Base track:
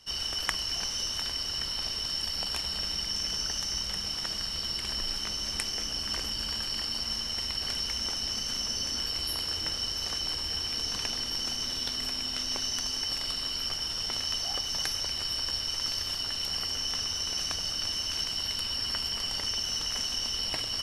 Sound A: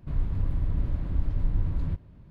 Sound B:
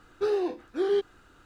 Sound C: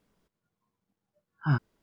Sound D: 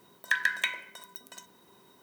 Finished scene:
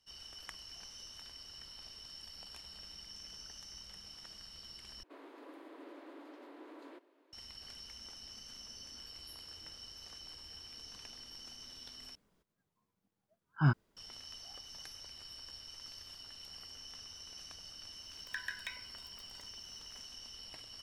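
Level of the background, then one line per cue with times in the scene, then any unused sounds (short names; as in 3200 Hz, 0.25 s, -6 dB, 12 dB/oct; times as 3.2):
base track -18.5 dB
5.03 replace with A -4 dB + steep high-pass 290 Hz 72 dB/oct
12.15 replace with C -2 dB + record warp 78 rpm, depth 250 cents
18.03 add D -15 dB
not used: B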